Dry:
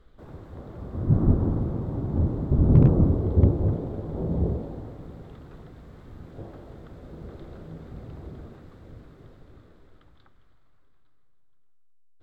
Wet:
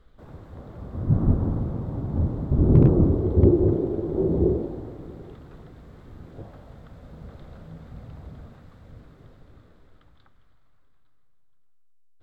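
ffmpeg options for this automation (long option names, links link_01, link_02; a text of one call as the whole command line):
ffmpeg -i in.wav -af "asetnsamples=nb_out_samples=441:pad=0,asendcmd='2.57 equalizer g 6.5;3.45 equalizer g 14.5;4.66 equalizer g 8;5.34 equalizer g 0;6.42 equalizer g -11.5;8.94 equalizer g -4.5',equalizer=frequency=360:width_type=o:width=0.55:gain=-3.5" out.wav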